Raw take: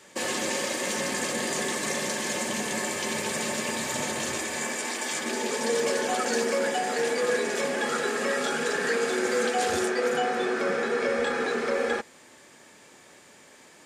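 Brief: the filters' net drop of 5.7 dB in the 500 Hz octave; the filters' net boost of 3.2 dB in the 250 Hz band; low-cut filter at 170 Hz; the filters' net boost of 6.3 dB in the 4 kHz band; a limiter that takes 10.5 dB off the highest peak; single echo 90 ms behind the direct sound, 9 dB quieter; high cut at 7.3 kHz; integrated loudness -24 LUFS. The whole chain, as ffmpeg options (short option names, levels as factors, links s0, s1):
-af "highpass=170,lowpass=7300,equalizer=f=250:t=o:g=7.5,equalizer=f=500:t=o:g=-9,equalizer=f=4000:t=o:g=8.5,alimiter=limit=0.0631:level=0:latency=1,aecho=1:1:90:0.355,volume=2.24"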